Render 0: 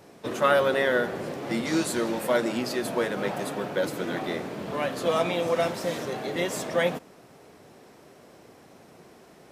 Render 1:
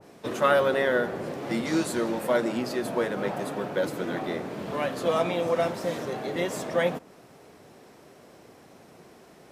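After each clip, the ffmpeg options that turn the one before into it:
ffmpeg -i in.wav -af "adynamicequalizer=threshold=0.01:dfrequency=1800:dqfactor=0.7:tfrequency=1800:tqfactor=0.7:attack=5:release=100:ratio=0.375:range=2.5:mode=cutabove:tftype=highshelf" out.wav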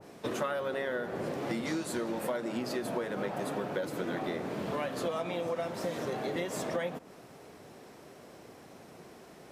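ffmpeg -i in.wav -af "acompressor=threshold=-30dB:ratio=10" out.wav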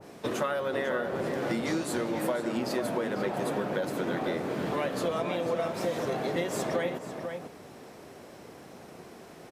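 ffmpeg -i in.wav -filter_complex "[0:a]asplit=2[link_01][link_02];[link_02]adelay=495.6,volume=-6dB,highshelf=frequency=4000:gain=-11.2[link_03];[link_01][link_03]amix=inputs=2:normalize=0,volume=3dB" out.wav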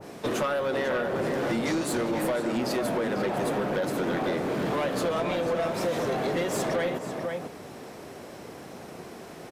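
ffmpeg -i in.wav -af "asoftclip=type=tanh:threshold=-27dB,volume=5.5dB" out.wav

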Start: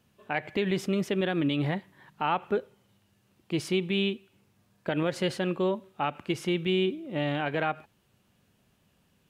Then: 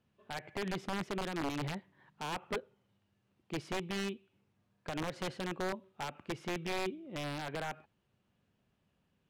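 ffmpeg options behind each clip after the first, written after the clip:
ffmpeg -i in.wav -af "aeval=exprs='(mod(10*val(0)+1,2)-1)/10':channel_layout=same,aemphasis=mode=reproduction:type=50fm,volume=-9dB" out.wav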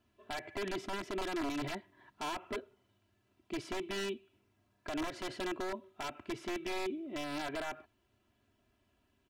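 ffmpeg -i in.wav -af "aecho=1:1:3:0.93,alimiter=level_in=7.5dB:limit=-24dB:level=0:latency=1:release=14,volume=-7.5dB,volume=1dB" out.wav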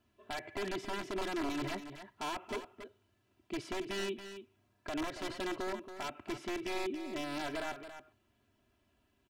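ffmpeg -i in.wav -af "aecho=1:1:278:0.299" out.wav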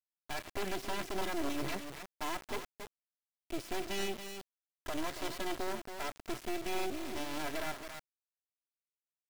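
ffmpeg -i in.wav -af "acrusher=bits=5:dc=4:mix=0:aa=0.000001,volume=3.5dB" out.wav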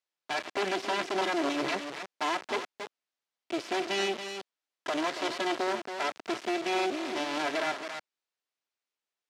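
ffmpeg -i in.wav -af "highpass=300,lowpass=5400,volume=9dB" out.wav

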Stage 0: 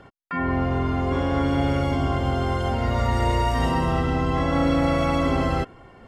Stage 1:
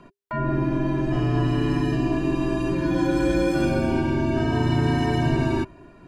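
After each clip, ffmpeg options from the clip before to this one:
ffmpeg -i in.wav -af "afreqshift=-400" out.wav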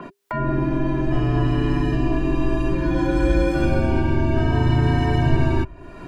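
ffmpeg -i in.wav -filter_complex "[0:a]asubboost=boost=4.5:cutoff=88,acrossover=split=150[link_01][link_02];[link_02]acompressor=mode=upward:threshold=-28dB:ratio=2.5[link_03];[link_01][link_03]amix=inputs=2:normalize=0,adynamicequalizer=threshold=0.00355:dfrequency=3700:dqfactor=0.7:tfrequency=3700:tqfactor=0.7:attack=5:release=100:ratio=0.375:range=3:mode=cutabove:tftype=highshelf,volume=2dB" out.wav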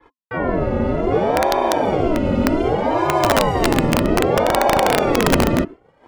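ffmpeg -i in.wav -af "agate=range=-33dB:threshold=-25dB:ratio=3:detection=peak,aeval=exprs='(mod(2.99*val(0)+1,2)-1)/2.99':channel_layout=same,aeval=exprs='val(0)*sin(2*PI*460*n/s+460*0.5/0.64*sin(2*PI*0.64*n/s))':channel_layout=same,volume=4.5dB" out.wav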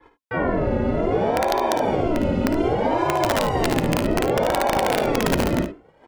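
ffmpeg -i in.wav -filter_complex "[0:a]bandreject=frequency=1200:width=12,acompressor=threshold=-17dB:ratio=6,asplit=2[link_01][link_02];[link_02]aecho=0:1:56|73:0.299|0.266[link_03];[link_01][link_03]amix=inputs=2:normalize=0" out.wav

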